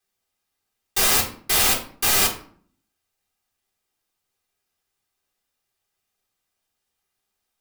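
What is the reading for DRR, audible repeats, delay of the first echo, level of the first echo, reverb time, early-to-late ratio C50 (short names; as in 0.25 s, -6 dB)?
-7.5 dB, none, none, none, 0.50 s, 9.0 dB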